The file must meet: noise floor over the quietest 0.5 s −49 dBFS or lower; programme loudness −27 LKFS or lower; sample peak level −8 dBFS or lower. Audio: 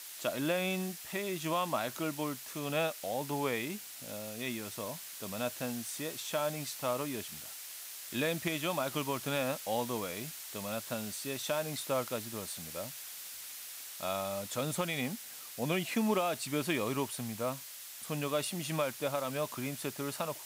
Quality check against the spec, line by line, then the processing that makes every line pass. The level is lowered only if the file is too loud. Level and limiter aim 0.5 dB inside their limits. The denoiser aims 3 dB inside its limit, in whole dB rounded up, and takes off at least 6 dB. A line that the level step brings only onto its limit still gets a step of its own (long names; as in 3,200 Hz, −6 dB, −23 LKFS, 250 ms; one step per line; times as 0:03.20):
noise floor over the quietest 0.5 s −47 dBFS: out of spec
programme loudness −35.5 LKFS: in spec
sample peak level −19.5 dBFS: in spec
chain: broadband denoise 6 dB, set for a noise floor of −47 dBFS